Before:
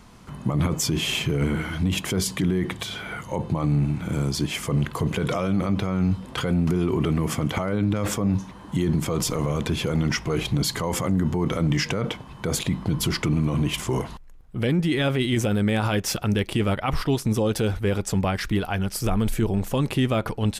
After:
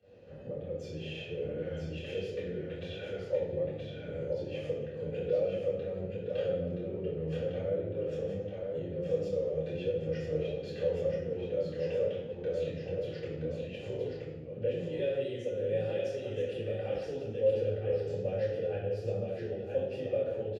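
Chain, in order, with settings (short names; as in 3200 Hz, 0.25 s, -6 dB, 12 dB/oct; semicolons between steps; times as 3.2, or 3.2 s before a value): 14.8–17.04 bell 9200 Hz +14 dB 1.7 oct; compressor 6:1, threshold -29 dBFS, peak gain reduction 15 dB; vowel filter e; pump 97 bpm, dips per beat 1, -12 dB, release 0.106 s; echo 0.973 s -4.5 dB; reverb RT60 1.1 s, pre-delay 3 ms, DRR -10.5 dB; flange 1.3 Hz, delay 9.7 ms, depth 3.1 ms, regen +67%; bell 1900 Hz -8.5 dB 1 oct; gain -4 dB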